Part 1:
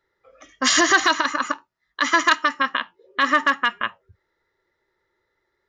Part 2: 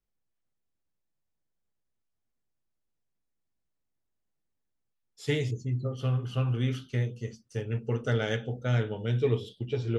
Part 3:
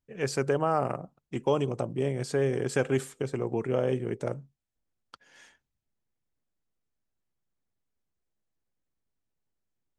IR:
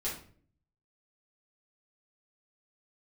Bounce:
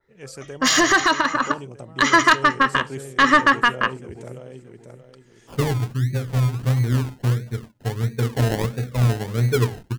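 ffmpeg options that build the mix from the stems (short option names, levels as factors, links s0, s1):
-filter_complex "[0:a]asoftclip=type=tanh:threshold=0.266,volume=1.26[s0];[1:a]bandreject=f=305.4:t=h:w=4,bandreject=f=610.8:t=h:w=4,bandreject=f=916.2:t=h:w=4,bandreject=f=1221.6:t=h:w=4,bandreject=f=1527:t=h:w=4,bandreject=f=1832.4:t=h:w=4,bandreject=f=2137.8:t=h:w=4,bandreject=f=2443.2:t=h:w=4,bandreject=f=2748.6:t=h:w=4,bandreject=f=3054:t=h:w=4,acrusher=samples=30:mix=1:aa=0.000001:lfo=1:lforange=18:lforate=1.5,adelay=300,volume=1[s1];[2:a]highshelf=f=3700:g=11,volume=0.251,asplit=2[s2][s3];[s3]volume=0.501,aecho=0:1:627|1254|1881|2508|3135:1|0.32|0.102|0.0328|0.0105[s4];[s0][s1][s2][s4]amix=inputs=4:normalize=0,lowshelf=f=200:g=6.5,dynaudnorm=f=360:g=9:m=1.58,adynamicequalizer=threshold=0.0316:dfrequency=2900:dqfactor=0.7:tfrequency=2900:tqfactor=0.7:attack=5:release=100:ratio=0.375:range=2.5:mode=cutabove:tftype=highshelf"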